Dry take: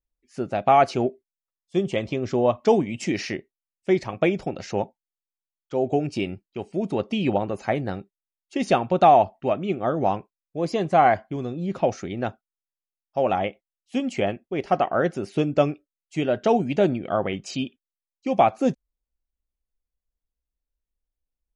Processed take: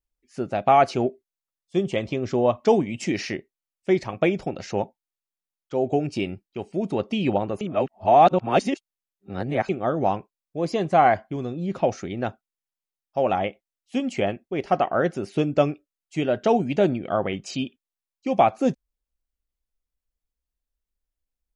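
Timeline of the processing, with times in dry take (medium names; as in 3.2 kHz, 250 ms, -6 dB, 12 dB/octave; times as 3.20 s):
7.61–9.69 s: reverse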